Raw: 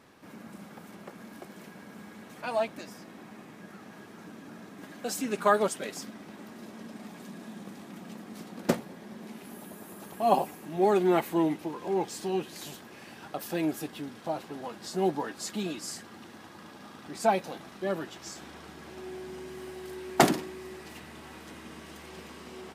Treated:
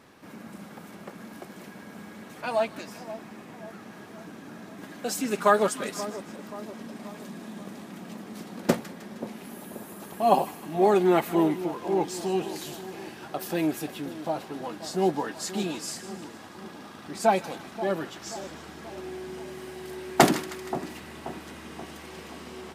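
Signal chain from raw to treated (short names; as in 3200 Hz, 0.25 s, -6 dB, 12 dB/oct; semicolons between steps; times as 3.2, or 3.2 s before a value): on a send: split-band echo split 1100 Hz, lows 0.531 s, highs 0.156 s, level -13.5 dB; on the sum: gain +3 dB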